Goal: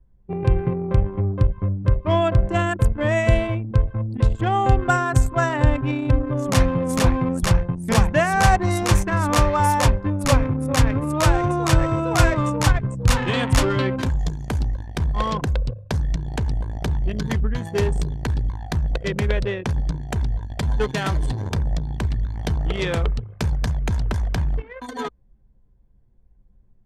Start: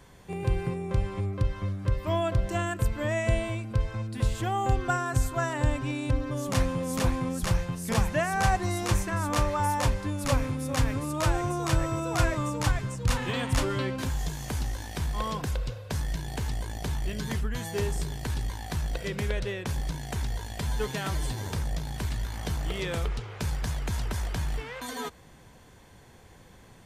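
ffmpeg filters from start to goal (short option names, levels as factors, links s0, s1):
-af "anlmdn=10,volume=2.66"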